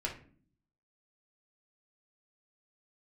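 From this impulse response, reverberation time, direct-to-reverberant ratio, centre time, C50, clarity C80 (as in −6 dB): 0.45 s, −2.0 dB, 19 ms, 8.5 dB, 14.5 dB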